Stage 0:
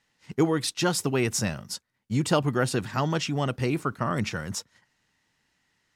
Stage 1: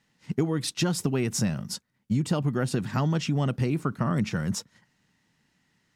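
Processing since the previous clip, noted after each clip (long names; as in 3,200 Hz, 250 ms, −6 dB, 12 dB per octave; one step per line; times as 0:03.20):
parametric band 180 Hz +10 dB 1.5 octaves
downward compressor 6 to 1, threshold −22 dBFS, peak gain reduction 10.5 dB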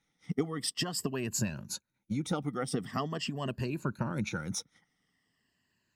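rippled gain that drifts along the octave scale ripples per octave 1.4, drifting −0.44 Hz, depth 14 dB
harmonic and percussive parts rebalanced harmonic −9 dB
level −5 dB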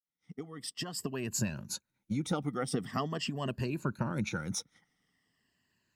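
fade in at the beginning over 1.51 s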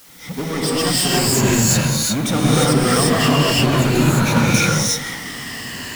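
power curve on the samples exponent 0.35
reverb whose tail is shaped and stops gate 380 ms rising, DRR −6.5 dB
level +2.5 dB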